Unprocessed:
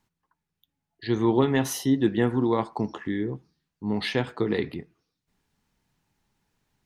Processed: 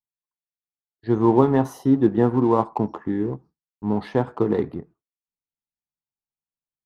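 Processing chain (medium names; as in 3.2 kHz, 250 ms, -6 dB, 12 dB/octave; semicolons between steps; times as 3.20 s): resonant high shelf 1.6 kHz -14 dB, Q 1.5; expander -44 dBFS; in parallel at -7.5 dB: crossover distortion -34.5 dBFS; on the sum: trim +1.5 dB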